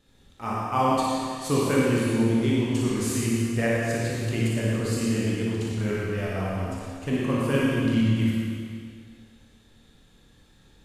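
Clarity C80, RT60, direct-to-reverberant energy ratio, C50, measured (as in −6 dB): −2.0 dB, 2.1 s, −6.5 dB, −4.5 dB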